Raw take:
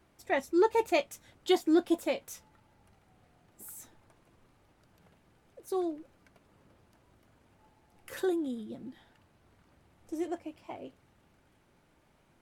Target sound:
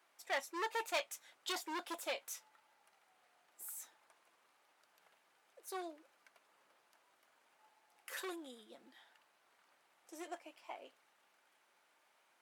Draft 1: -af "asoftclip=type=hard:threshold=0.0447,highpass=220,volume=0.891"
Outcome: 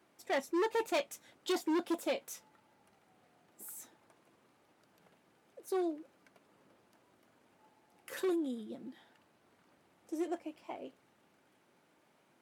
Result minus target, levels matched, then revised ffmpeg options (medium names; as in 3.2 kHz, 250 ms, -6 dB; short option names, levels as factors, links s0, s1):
250 Hz band +9.0 dB
-af "asoftclip=type=hard:threshold=0.0447,highpass=830,volume=0.891"